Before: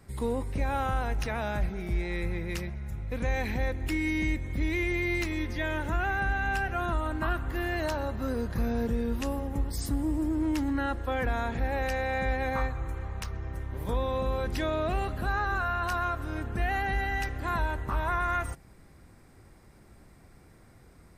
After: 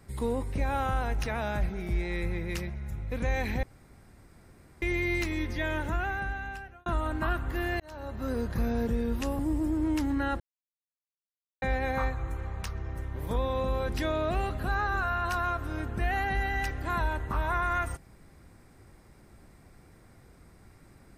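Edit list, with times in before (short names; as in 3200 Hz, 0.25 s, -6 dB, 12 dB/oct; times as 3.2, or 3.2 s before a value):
3.63–4.82 room tone
5.8–6.86 fade out
7.8–8.35 fade in
9.39–9.97 cut
10.98–12.2 mute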